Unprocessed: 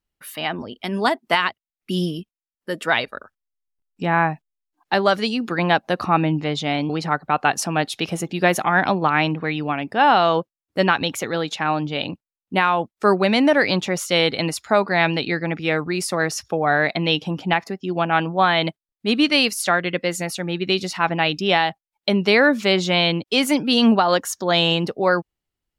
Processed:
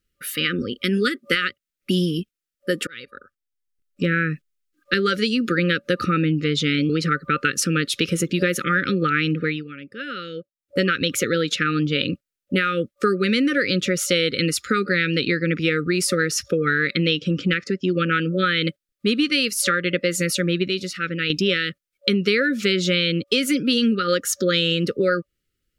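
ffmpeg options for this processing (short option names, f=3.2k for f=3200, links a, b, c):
-filter_complex "[0:a]asettb=1/sr,asplit=3[a][b][c];[a]atrim=end=17.114[d];[b]atrim=start=17.11:end=18.07,asetpts=PTS-STARTPTS,afade=t=in:d=0.004:c=qsin,afade=t=out:st=0.956:d=0.004:c=qsin,lowpass=f=7.9k:w=0.5412,lowpass=f=7.9k:w=1.3066[e];[c]atrim=start=18.066[f];[d][e]acrossfade=d=0.004:c1=hsin:c2=qsin[g];[g][f]acrossfade=d=0.004:c1=qsin:c2=hsin,asplit=6[h][i][j][k][l][m];[h]atrim=end=2.87,asetpts=PTS-STARTPTS,afade=t=out:st=2.866:d=0.004:c=hsin[n];[i]atrim=start=2.87:end=9.64,asetpts=PTS-STARTPTS,afade=t=in:d=1.33,afade=t=out:st=6.49:d=0.28:silence=0.133352[o];[j]atrim=start=9.64:end=10.52,asetpts=PTS-STARTPTS,volume=-17.5dB[p];[k]atrim=start=10.52:end=20.682,asetpts=PTS-STARTPTS,afade=t=in:d=0.28:silence=0.133352[q];[l]atrim=start=20.678:end=21.302,asetpts=PTS-STARTPTS,volume=-9dB[r];[m]atrim=start=21.298[s];[n][o][p][q]concat=n=4:v=0:a=1[t];[t][r]acrossfade=d=0.004:c1=hsin:c2=hsin[u];[u][s]acrossfade=d=0.004:c1=hsin:c2=hsin,afftfilt=real='re*(1-between(b*sr/4096,560,1200))':imag='im*(1-between(b*sr/4096,560,1200))':win_size=4096:overlap=0.75,acompressor=threshold=-24dB:ratio=6,volume=7dB"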